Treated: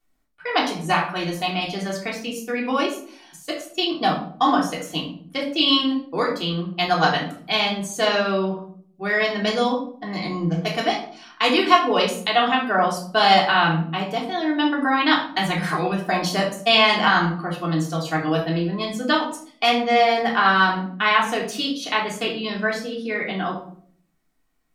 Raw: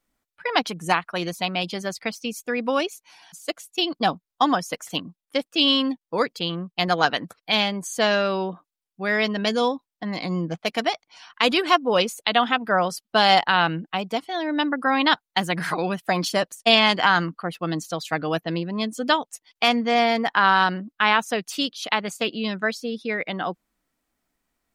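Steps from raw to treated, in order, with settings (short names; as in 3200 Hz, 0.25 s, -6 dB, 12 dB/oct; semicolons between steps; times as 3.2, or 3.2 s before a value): shoebox room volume 610 m³, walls furnished, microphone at 3.4 m; gain -3.5 dB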